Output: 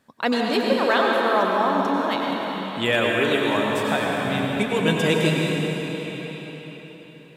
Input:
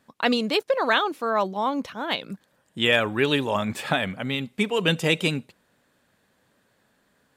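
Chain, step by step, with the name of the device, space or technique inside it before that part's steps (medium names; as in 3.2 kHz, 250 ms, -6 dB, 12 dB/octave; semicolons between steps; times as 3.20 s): cathedral (reverberation RT60 4.5 s, pre-delay 87 ms, DRR -2 dB); 3.12–4.25 s: high-pass 250 Hz 6 dB/octave; dynamic bell 3 kHz, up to -5 dB, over -36 dBFS, Q 1.4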